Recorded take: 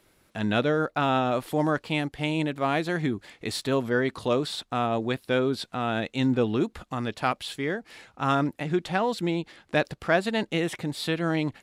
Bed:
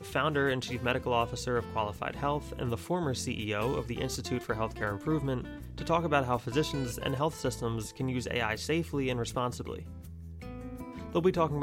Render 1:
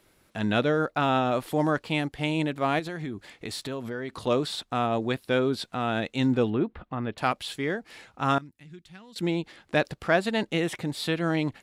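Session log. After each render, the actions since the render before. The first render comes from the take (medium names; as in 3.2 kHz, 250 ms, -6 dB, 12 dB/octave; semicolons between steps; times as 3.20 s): 2.79–4.27 s: compression 4:1, threshold -31 dBFS; 6.50–7.18 s: distance through air 420 m; 8.38–9.16 s: amplifier tone stack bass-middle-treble 6-0-2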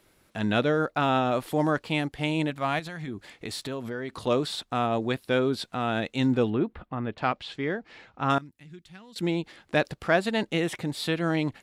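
2.50–3.08 s: peaking EQ 380 Hz -10.5 dB 0.83 oct; 6.86–8.30 s: distance through air 140 m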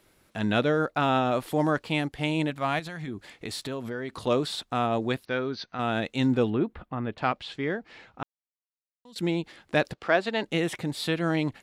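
5.25–5.79 s: rippled Chebyshev low-pass 6.3 kHz, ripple 6 dB; 8.23–9.05 s: mute; 9.93–10.44 s: three-band isolator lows -13 dB, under 240 Hz, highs -19 dB, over 6.5 kHz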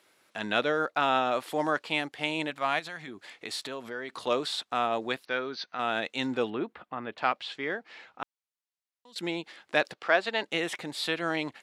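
frequency weighting A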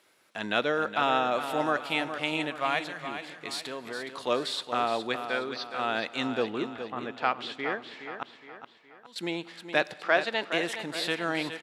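feedback delay 417 ms, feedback 44%, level -9.5 dB; Schroeder reverb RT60 2.2 s, combs from 32 ms, DRR 19.5 dB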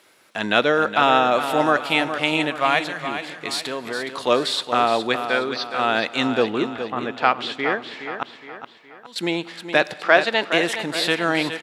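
trim +9 dB; peak limiter -1 dBFS, peak gain reduction 2.5 dB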